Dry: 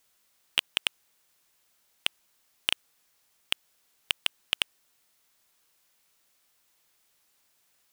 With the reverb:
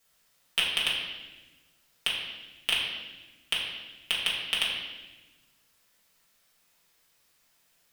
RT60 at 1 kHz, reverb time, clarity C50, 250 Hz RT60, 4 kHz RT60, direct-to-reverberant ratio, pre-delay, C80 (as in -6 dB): 1.0 s, 1.2 s, 2.0 dB, 1.7 s, 1.1 s, -7.0 dB, 4 ms, 4.0 dB